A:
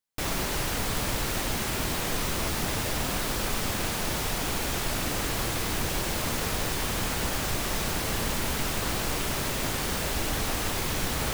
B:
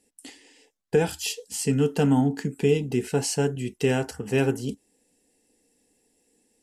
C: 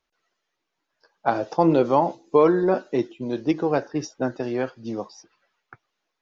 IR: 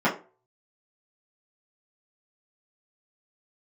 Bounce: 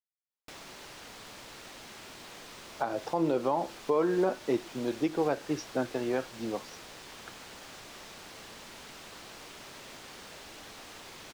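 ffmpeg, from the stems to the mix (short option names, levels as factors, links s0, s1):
-filter_complex "[0:a]lowshelf=f=120:g=-10,acrossover=split=3000|7800[s0][s1][s2];[s0]acompressor=threshold=0.0112:ratio=4[s3];[s1]acompressor=threshold=0.01:ratio=4[s4];[s2]acompressor=threshold=0.00316:ratio=4[s5];[s3][s4][s5]amix=inputs=3:normalize=0,adelay=300,volume=0.398[s6];[2:a]adelay=1550,volume=0.708[s7];[s6][s7]amix=inputs=2:normalize=0,lowshelf=f=190:g=-7,alimiter=limit=0.126:level=0:latency=1:release=193,volume=1,highshelf=f=4800:g=-5.5"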